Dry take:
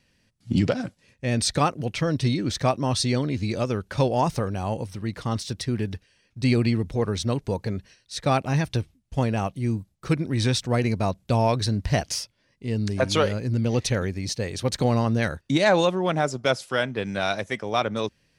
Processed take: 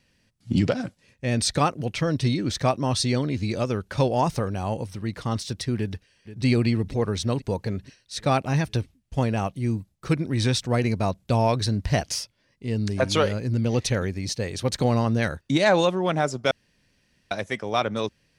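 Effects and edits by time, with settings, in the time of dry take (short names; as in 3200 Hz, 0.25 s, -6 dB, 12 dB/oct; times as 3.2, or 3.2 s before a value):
5.77–6.45 echo throw 0.48 s, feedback 65%, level -14 dB
16.51–17.31 room tone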